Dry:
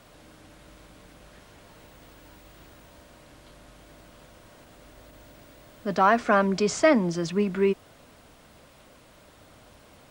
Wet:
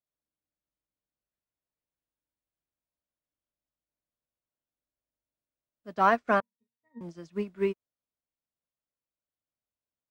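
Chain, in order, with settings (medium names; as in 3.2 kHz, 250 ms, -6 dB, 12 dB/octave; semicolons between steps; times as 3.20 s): 6.40–7.01 s: pitch-class resonator A#, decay 0.26 s; upward expansion 2.5:1, over -48 dBFS; trim -1.5 dB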